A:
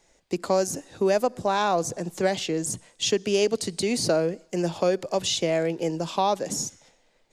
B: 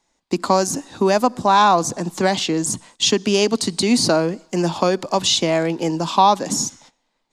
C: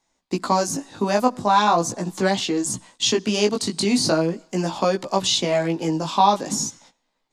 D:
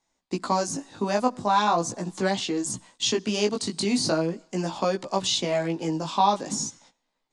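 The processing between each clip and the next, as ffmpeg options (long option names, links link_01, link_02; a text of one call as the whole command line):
ffmpeg -i in.wav -af "agate=range=-13dB:threshold=-53dB:ratio=16:detection=peak,equalizer=frequency=250:width_type=o:width=1:gain=9,equalizer=frequency=500:width_type=o:width=1:gain=-5,equalizer=frequency=1000:width_type=o:width=1:gain=11,equalizer=frequency=4000:width_type=o:width=1:gain=6,equalizer=frequency=8000:width_type=o:width=1:gain=3,volume=3dB" out.wav
ffmpeg -i in.wav -af "flanger=delay=15:depth=4.8:speed=0.4" out.wav
ffmpeg -i in.wav -af "aresample=22050,aresample=44100,volume=-4.5dB" out.wav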